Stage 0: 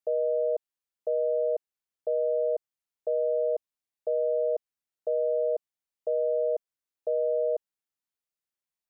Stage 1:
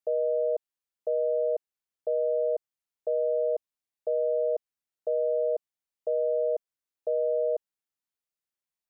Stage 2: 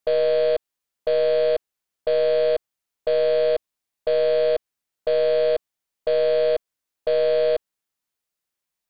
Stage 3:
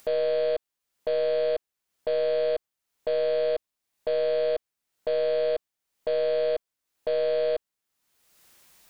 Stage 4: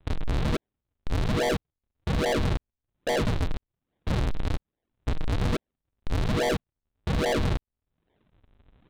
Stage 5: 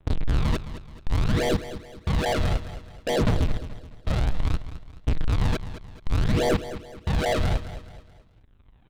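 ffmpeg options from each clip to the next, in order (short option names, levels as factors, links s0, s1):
-af anull
-af "aeval=exprs='0.1*(cos(1*acos(clip(val(0)/0.1,-1,1)))-cos(1*PI/2))+0.00562*(cos(5*acos(clip(val(0)/0.1,-1,1)))-cos(5*PI/2))+0.000562*(cos(6*acos(clip(val(0)/0.1,-1,1)))-cos(6*PI/2))+0.00316*(cos(7*acos(clip(val(0)/0.1,-1,1)))-cos(7*PI/2))+0.00794*(cos(8*acos(clip(val(0)/0.1,-1,1)))-cos(8*PI/2))':c=same,volume=2.24"
-af "alimiter=limit=0.15:level=0:latency=1:release=24,acompressor=mode=upward:threshold=0.02:ratio=2.5,volume=0.841"
-af "aresample=8000,acrusher=samples=29:mix=1:aa=0.000001:lfo=1:lforange=46.4:lforate=1.2,aresample=44100,asoftclip=type=hard:threshold=0.0355,volume=2.11"
-af "aphaser=in_gain=1:out_gain=1:delay=1.6:decay=0.41:speed=0.61:type=triangular,aecho=1:1:214|428|642|856:0.224|0.0895|0.0358|0.0143"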